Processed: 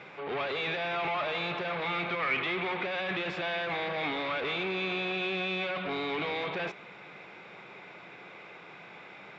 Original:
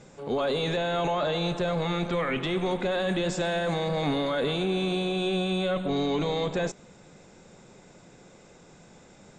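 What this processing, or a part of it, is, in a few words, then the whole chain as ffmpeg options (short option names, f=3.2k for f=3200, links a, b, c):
overdrive pedal into a guitar cabinet: -filter_complex "[0:a]asplit=2[a][b];[b]highpass=f=720:p=1,volume=24dB,asoftclip=type=tanh:threshold=-17dB[c];[a][c]amix=inputs=2:normalize=0,lowpass=f=7.9k:p=1,volume=-6dB,highpass=88,equalizer=f=240:t=q:w=4:g=-7,equalizer=f=530:t=q:w=4:g=-5,equalizer=f=1.2k:t=q:w=4:g=3,equalizer=f=2.3k:t=q:w=4:g=9,lowpass=f=3.5k:w=0.5412,lowpass=f=3.5k:w=1.3066,volume=-9dB"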